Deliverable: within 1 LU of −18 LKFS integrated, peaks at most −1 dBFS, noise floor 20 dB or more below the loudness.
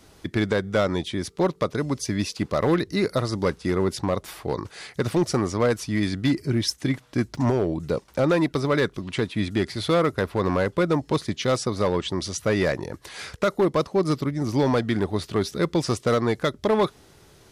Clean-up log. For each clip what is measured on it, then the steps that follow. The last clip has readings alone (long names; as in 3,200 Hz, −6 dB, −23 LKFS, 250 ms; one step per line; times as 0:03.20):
share of clipped samples 1.1%; peaks flattened at −14.5 dBFS; number of dropouts 1; longest dropout 1.2 ms; integrated loudness −24.5 LKFS; sample peak −14.5 dBFS; target loudness −18.0 LKFS
→ clipped peaks rebuilt −14.5 dBFS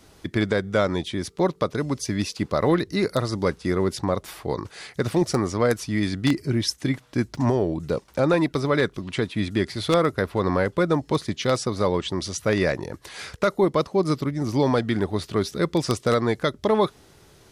share of clipped samples 0.0%; number of dropouts 1; longest dropout 1.2 ms
→ repair the gap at 0:07.35, 1.2 ms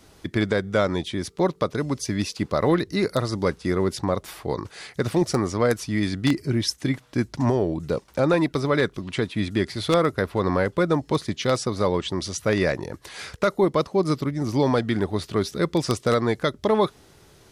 number of dropouts 0; integrated loudness −24.0 LKFS; sample peak −5.5 dBFS; target loudness −18.0 LKFS
→ level +6 dB
brickwall limiter −1 dBFS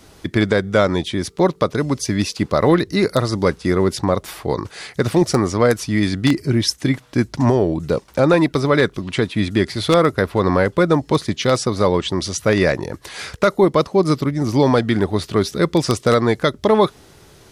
integrated loudness −18.0 LKFS; sample peak −1.0 dBFS; background noise floor −48 dBFS